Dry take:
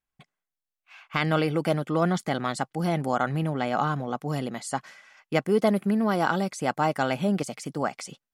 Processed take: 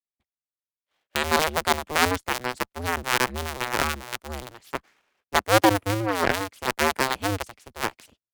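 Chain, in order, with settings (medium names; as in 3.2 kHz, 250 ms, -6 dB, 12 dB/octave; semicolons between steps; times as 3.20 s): cycle switcher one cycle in 2, inverted; Chebyshev shaper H 7 -19 dB, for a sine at -8.5 dBFS; three bands expanded up and down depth 40%; trim +3 dB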